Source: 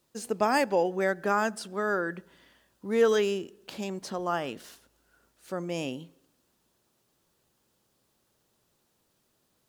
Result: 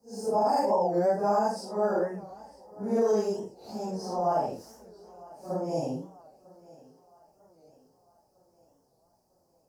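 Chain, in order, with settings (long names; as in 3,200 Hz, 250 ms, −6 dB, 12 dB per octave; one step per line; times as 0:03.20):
random phases in long frames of 200 ms
drawn EQ curve 170 Hz 0 dB, 330 Hz −4 dB, 830 Hz +6 dB, 1,300 Hz −13 dB, 3,500 Hz −27 dB, 5,000 Hz −1 dB, 7,100 Hz −8 dB
brickwall limiter −19.5 dBFS, peak gain reduction 8.5 dB
on a send: feedback echo with a high-pass in the loop 951 ms, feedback 52%, high-pass 160 Hz, level −21.5 dB
on the sum: wow of a warped record 45 rpm, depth 160 cents
level +3 dB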